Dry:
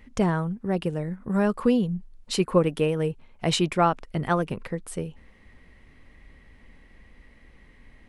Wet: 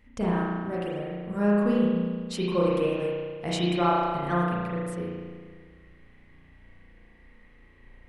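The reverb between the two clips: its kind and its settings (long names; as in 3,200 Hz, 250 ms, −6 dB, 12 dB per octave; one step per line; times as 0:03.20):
spring reverb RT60 1.7 s, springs 34 ms, chirp 75 ms, DRR −6 dB
level −8.5 dB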